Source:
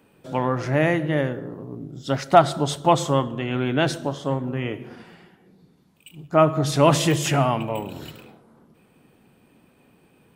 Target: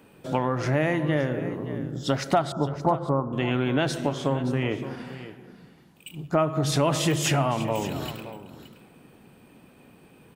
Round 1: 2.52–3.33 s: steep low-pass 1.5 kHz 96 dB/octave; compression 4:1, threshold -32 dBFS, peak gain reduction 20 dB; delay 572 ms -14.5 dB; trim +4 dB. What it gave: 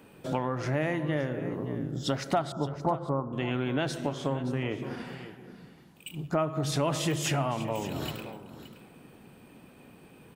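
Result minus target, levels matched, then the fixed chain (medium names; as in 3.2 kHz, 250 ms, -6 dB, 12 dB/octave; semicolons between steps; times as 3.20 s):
compression: peak gain reduction +5.5 dB
2.52–3.33 s: steep low-pass 1.5 kHz 96 dB/octave; compression 4:1, threshold -25 dBFS, peak gain reduction 14.5 dB; delay 572 ms -14.5 dB; trim +4 dB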